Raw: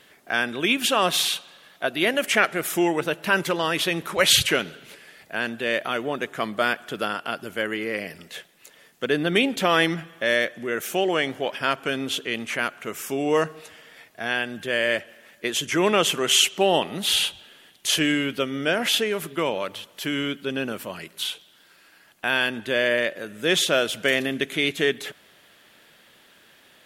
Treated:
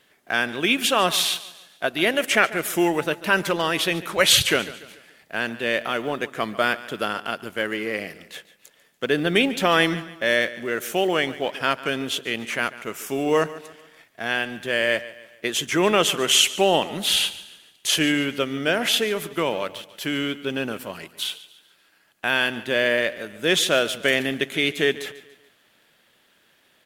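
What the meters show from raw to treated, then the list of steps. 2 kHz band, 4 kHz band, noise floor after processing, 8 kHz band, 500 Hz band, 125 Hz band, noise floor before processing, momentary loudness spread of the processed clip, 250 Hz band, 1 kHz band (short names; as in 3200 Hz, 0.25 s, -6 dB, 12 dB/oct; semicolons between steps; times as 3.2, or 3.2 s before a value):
+1.0 dB, +1.0 dB, -61 dBFS, +1.0 dB, +1.0 dB, +1.0 dB, -55 dBFS, 11 LU, +1.0 dB, +1.0 dB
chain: G.711 law mismatch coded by A; on a send: feedback echo 0.144 s, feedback 42%, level -17 dB; on the sum: gain +1.5 dB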